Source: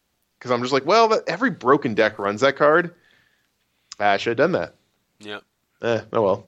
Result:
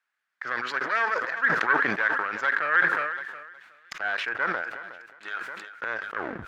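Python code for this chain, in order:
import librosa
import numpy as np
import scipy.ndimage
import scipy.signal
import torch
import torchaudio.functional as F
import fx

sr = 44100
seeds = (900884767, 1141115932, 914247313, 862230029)

y = fx.tape_stop_end(x, sr, length_s=0.32)
y = fx.recorder_agc(y, sr, target_db=-12.5, rise_db_per_s=23.0, max_gain_db=30)
y = fx.leveller(y, sr, passes=2)
y = fx.quant_dither(y, sr, seeds[0], bits=10, dither='triangular')
y = fx.cheby_harmonics(y, sr, harmonics=(2,), levels_db=(-7,), full_scale_db=0.0)
y = fx.bandpass_q(y, sr, hz=1600.0, q=4.4)
y = fx.echo_feedback(y, sr, ms=364, feedback_pct=45, wet_db=-22.0)
y = fx.sustainer(y, sr, db_per_s=38.0)
y = F.gain(torch.from_numpy(y), -6.5).numpy()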